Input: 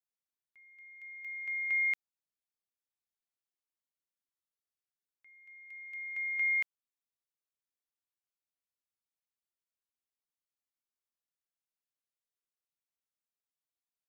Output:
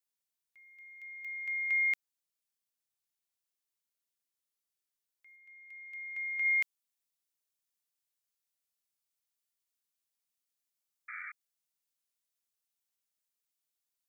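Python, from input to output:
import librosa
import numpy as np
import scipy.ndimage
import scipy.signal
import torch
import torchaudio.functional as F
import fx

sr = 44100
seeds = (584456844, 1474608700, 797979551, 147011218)

y = fx.spec_paint(x, sr, seeds[0], shape='noise', start_s=11.08, length_s=0.24, low_hz=1200.0, high_hz=2400.0, level_db=-44.0)
y = fx.high_shelf(y, sr, hz=2800.0, db=fx.steps((0.0, 9.0), (5.35, 2.5), (6.44, 11.0)))
y = y * 10.0 ** (-2.5 / 20.0)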